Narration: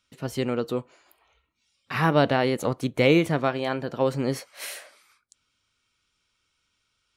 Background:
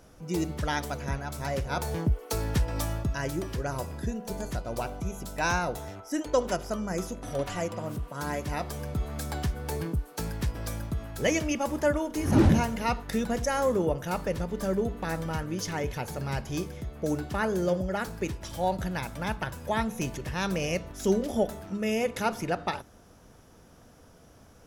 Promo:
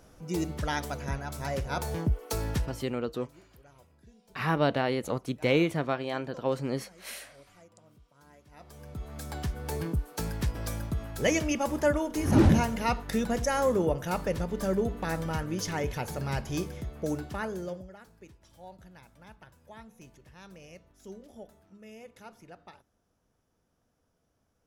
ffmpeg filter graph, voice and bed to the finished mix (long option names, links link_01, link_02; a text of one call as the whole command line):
ffmpeg -i stem1.wav -i stem2.wav -filter_complex "[0:a]adelay=2450,volume=-5.5dB[link_01];[1:a]volume=23.5dB,afade=type=out:start_time=2.5:duration=0.34:silence=0.0668344,afade=type=in:start_time=8.51:duration=1.42:silence=0.0562341,afade=type=out:start_time=16.78:duration=1.18:silence=0.0944061[link_02];[link_01][link_02]amix=inputs=2:normalize=0" out.wav